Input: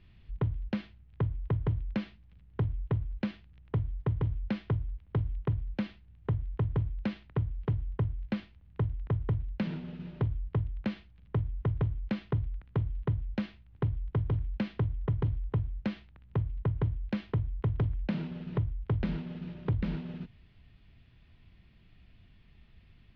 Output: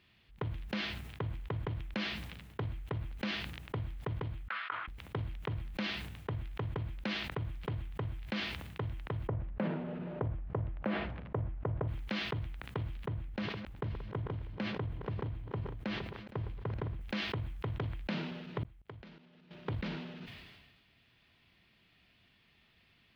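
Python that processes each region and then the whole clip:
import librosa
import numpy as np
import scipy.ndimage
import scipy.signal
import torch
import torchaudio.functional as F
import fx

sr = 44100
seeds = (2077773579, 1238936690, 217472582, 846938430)

y = fx.chain(x, sr, fx.highpass_res(hz=1300.0, q=4.9),
    fx.air_absorb(metres=390.0), at=(4.48, 4.88))
y = fx.chain(y, sr, fx.lowpass(hz=1300.0, slope=12),
    fx.peak_eq(hz=580.0, db=5.0, octaves=0.7),
    fx.env_flatten(amount_pct=50), at=(9.28, 11.88))
y = fx.chain(y, sr, fx.reverse_delay_fb(ms=232, feedback_pct=64, wet_db=-14),
    fx.high_shelf(hz=2000.0, db=-8.0), at=(13.05, 17.01))
y = fx.chain(y, sr, fx.level_steps(step_db=18),
    fx.gate_flip(shuts_db=-40.0, range_db=-40), at=(18.63, 19.51))
y = fx.highpass(y, sr, hz=530.0, slope=6)
y = fx.high_shelf(y, sr, hz=3700.0, db=5.5)
y = fx.sustainer(y, sr, db_per_s=38.0)
y = y * librosa.db_to_amplitude(1.0)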